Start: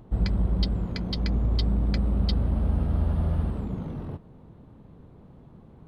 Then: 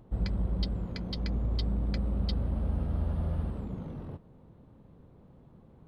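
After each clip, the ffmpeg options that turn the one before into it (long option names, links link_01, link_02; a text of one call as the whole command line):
ffmpeg -i in.wav -af "equalizer=frequency=530:width=7.8:gain=4,volume=-6dB" out.wav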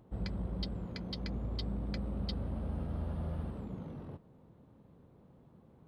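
ffmpeg -i in.wav -af "highpass=frequency=94:poles=1,volume=-3dB" out.wav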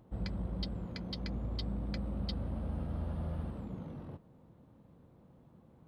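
ffmpeg -i in.wav -af "bandreject=frequency=410:width=12" out.wav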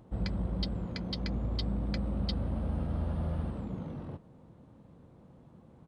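ffmpeg -i in.wav -af "aresample=22050,aresample=44100,volume=4.5dB" out.wav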